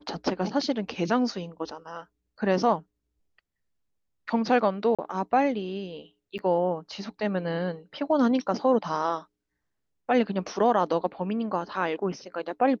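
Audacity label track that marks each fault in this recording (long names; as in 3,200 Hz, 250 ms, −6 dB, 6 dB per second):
4.950000	4.990000	drop-out 36 ms
6.380000	6.390000	drop-out 9.1 ms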